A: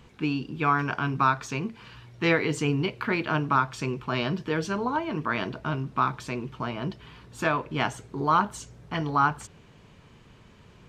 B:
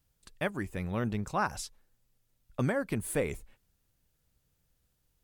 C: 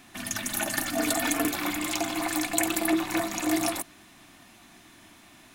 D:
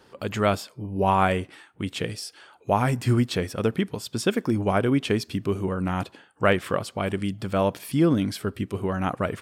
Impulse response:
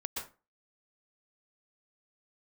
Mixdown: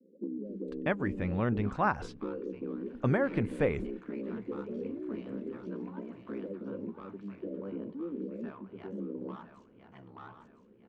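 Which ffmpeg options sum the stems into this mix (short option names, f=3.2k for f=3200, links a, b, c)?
-filter_complex "[0:a]asoftclip=type=tanh:threshold=-21dB,aeval=exprs='val(0)*sin(2*PI*33*n/s)':c=same,volume=0.5dB,asplit=2[a][b];[b]volume=-20dB[c];[1:a]adelay=450,volume=2dB[d];[2:a]acompressor=threshold=-37dB:ratio=4,adelay=1700,volume=-13dB,asplit=2[e][f];[f]volume=-14.5dB[g];[3:a]flanger=delay=1.9:depth=9.7:regen=73:speed=0.44:shape=sinusoidal,volume=-11dB[h];[a][e][h]amix=inputs=3:normalize=0,asuperpass=centerf=320:order=20:qfactor=0.87,acompressor=threshold=-34dB:ratio=6,volume=0dB[i];[c][g]amix=inputs=2:normalize=0,aecho=0:1:1009|2018|3027|4036|5045:1|0.38|0.144|0.0549|0.0209[j];[d][i][j]amix=inputs=3:normalize=0,lowpass=2.5k"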